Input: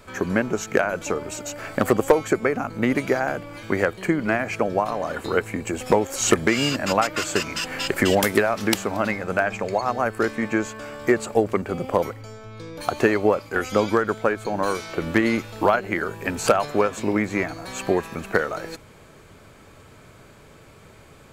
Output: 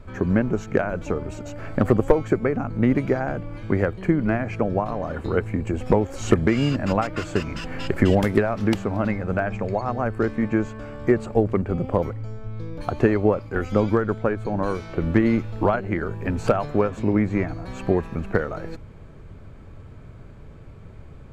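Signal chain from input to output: RIAA curve playback; gain -4 dB

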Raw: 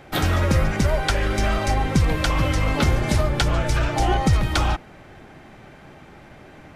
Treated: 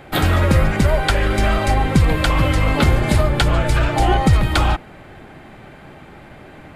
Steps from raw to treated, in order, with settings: bell 5800 Hz -9 dB 0.38 oct; gain +4.5 dB

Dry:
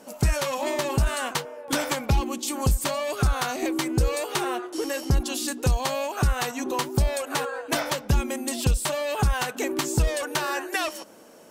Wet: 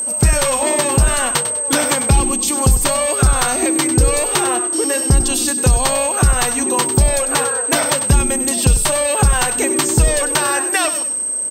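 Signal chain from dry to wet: whine 8300 Hz -27 dBFS; frequency-shifting echo 99 ms, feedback 33%, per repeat -32 Hz, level -12 dB; gain +8.5 dB

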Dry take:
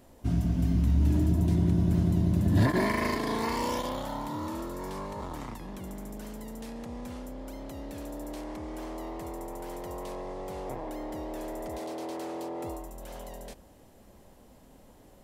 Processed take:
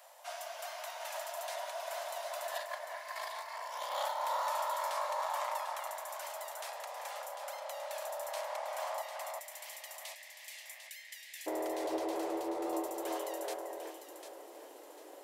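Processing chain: steep high-pass 580 Hz 72 dB/oct, from 9.01 s 1800 Hz, from 11.46 s 310 Hz; negative-ratio compressor -39 dBFS, ratio -0.5; echo with dull and thin repeats by turns 0.374 s, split 2000 Hz, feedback 55%, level -3 dB; gain +2 dB

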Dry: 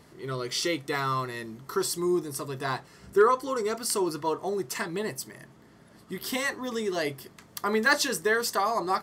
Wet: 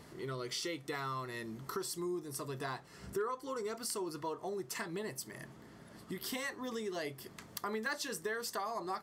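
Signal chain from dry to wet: compressor 3:1, threshold -40 dBFS, peak gain reduction 17.5 dB

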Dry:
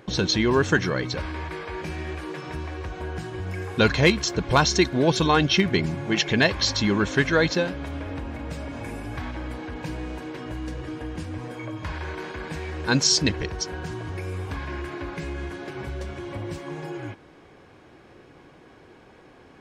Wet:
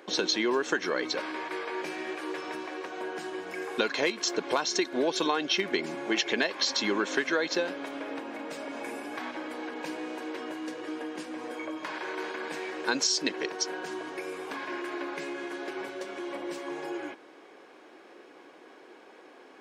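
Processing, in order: HPF 290 Hz 24 dB/oct; compressor 12:1, threshold -23 dBFS, peak gain reduction 11 dB

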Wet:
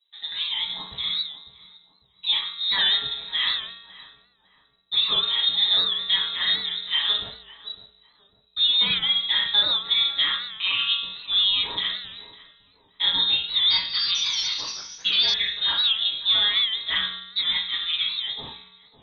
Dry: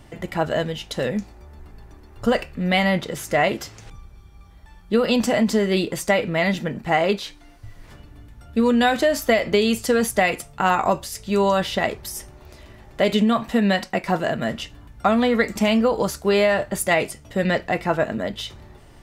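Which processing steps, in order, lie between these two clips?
gate -36 dBFS, range -23 dB; resonator 120 Hz, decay 1 s, harmonics odd, mix 80%; shoebox room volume 42 m³, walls mixed, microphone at 1.3 m; inverted band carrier 3900 Hz; 13.26–15.34 echoes that change speed 0.444 s, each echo +4 st, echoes 2, each echo -6 dB; darkening echo 0.553 s, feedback 43%, low-pass 1100 Hz, level -14 dB; record warp 78 rpm, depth 100 cents

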